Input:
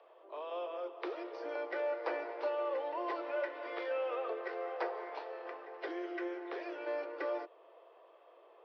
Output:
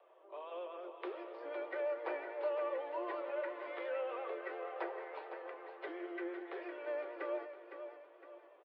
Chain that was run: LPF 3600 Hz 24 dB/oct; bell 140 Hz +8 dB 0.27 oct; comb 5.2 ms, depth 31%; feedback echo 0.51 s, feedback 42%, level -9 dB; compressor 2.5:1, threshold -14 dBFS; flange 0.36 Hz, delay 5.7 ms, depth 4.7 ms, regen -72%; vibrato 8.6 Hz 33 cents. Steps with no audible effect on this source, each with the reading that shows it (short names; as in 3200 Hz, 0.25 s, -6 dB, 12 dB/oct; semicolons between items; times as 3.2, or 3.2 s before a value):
bell 140 Hz: input band starts at 290 Hz; compressor, threshold -14 dBFS: input peak -23.0 dBFS